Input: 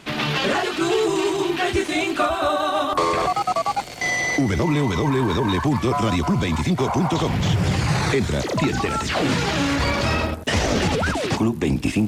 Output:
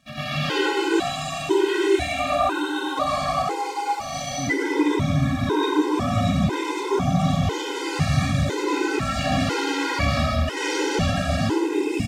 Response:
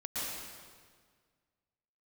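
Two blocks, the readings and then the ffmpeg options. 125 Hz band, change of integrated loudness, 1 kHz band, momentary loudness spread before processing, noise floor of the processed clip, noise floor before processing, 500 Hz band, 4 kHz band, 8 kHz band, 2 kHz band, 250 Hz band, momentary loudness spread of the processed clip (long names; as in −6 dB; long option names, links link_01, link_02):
−1.5 dB, −2.0 dB, −2.0 dB, 2 LU, −30 dBFS, −31 dBFS, −1.5 dB, −2.0 dB, −2.5 dB, −2.5 dB, −1.5 dB, 5 LU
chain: -filter_complex "[0:a]aresample=32000,aresample=44100,aeval=exprs='sgn(val(0))*max(abs(val(0))-0.00355,0)':channel_layout=same[link_01];[1:a]atrim=start_sample=2205,asetrate=57330,aresample=44100[link_02];[link_01][link_02]afir=irnorm=-1:irlink=0,afftfilt=real='re*gt(sin(2*PI*1*pts/sr)*(1-2*mod(floor(b*sr/1024/270),2)),0)':imag='im*gt(sin(2*PI*1*pts/sr)*(1-2*mod(floor(b*sr/1024/270),2)),0)':win_size=1024:overlap=0.75"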